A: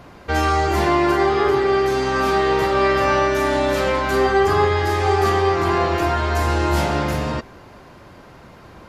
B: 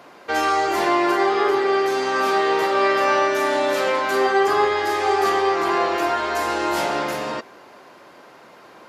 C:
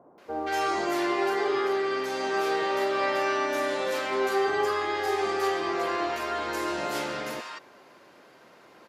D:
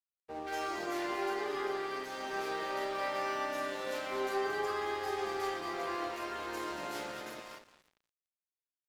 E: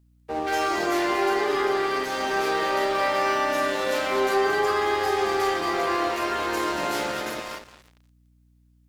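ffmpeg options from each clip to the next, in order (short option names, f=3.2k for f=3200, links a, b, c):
-af "highpass=350"
-filter_complex "[0:a]acrossover=split=930[a][b];[b]adelay=180[c];[a][c]amix=inputs=2:normalize=0,volume=-6.5dB"
-af "aecho=1:1:228|545:0.355|0.168,aeval=exprs='sgn(val(0))*max(abs(val(0))-0.0075,0)':c=same,volume=-8dB"
-filter_complex "[0:a]asplit=2[a][b];[b]alimiter=level_in=5.5dB:limit=-24dB:level=0:latency=1,volume=-5.5dB,volume=-1.5dB[c];[a][c]amix=inputs=2:normalize=0,aeval=exprs='val(0)+0.000501*(sin(2*PI*60*n/s)+sin(2*PI*2*60*n/s)/2+sin(2*PI*3*60*n/s)/3+sin(2*PI*4*60*n/s)/4+sin(2*PI*5*60*n/s)/5)':c=same,volume=8dB"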